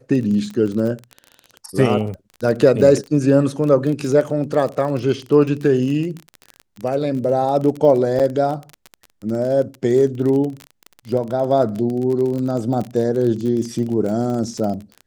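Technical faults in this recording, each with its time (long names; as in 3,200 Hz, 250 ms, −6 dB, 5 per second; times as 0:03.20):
surface crackle 27 per second −24 dBFS
0:08.19–0:08.20: drop-out 7.2 ms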